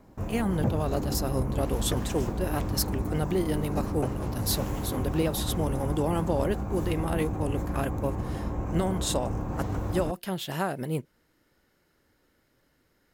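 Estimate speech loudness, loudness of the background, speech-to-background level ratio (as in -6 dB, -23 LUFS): -31.0 LUFS, -32.5 LUFS, 1.5 dB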